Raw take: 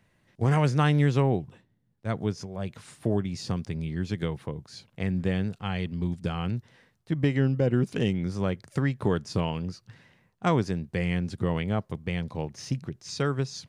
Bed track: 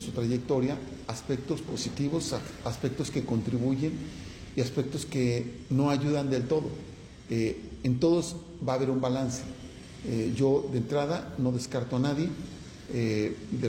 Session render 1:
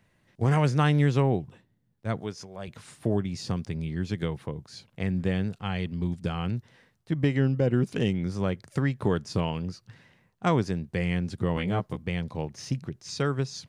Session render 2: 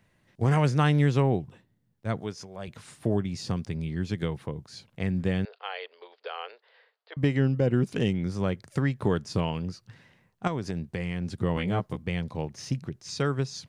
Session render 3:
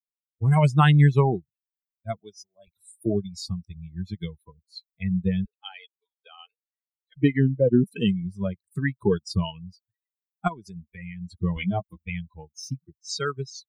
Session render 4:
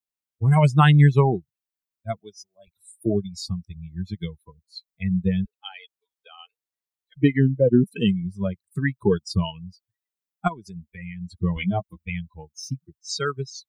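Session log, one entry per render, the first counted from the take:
0:02.20–0:02.68: low-shelf EQ 330 Hz −10.5 dB; 0:11.55–0:12.03: double-tracking delay 16 ms −3 dB
0:05.45–0:07.17: Chebyshev band-pass filter 440–4,700 Hz, order 5; 0:10.47–0:11.33: downward compressor 12 to 1, threshold −25 dBFS
spectral dynamics exaggerated over time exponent 3; automatic gain control gain up to 10 dB
level +2 dB

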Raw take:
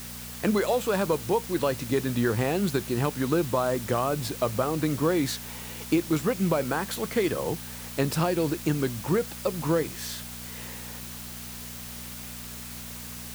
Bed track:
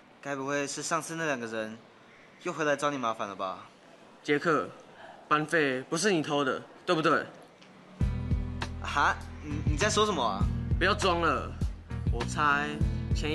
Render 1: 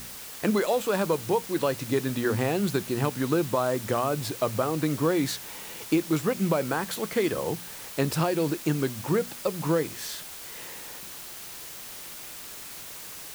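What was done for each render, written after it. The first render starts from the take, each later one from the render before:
hum removal 60 Hz, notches 4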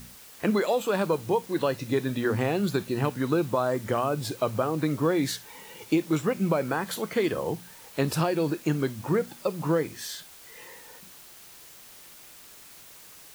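noise reduction from a noise print 8 dB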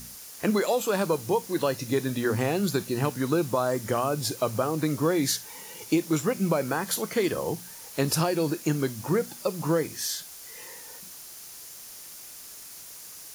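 flat-topped bell 7,900 Hz +8.5 dB
notch filter 8,000 Hz, Q 10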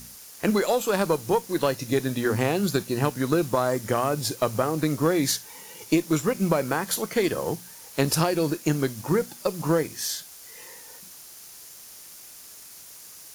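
harmonic generator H 2 −20 dB, 3 −24 dB, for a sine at −10 dBFS
in parallel at −6 dB: dead-zone distortion −42.5 dBFS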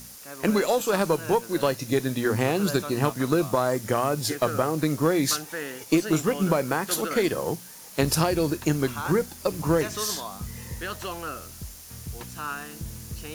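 mix in bed track −8 dB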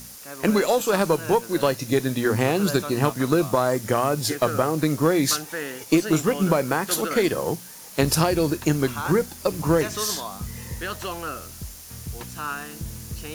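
level +2.5 dB

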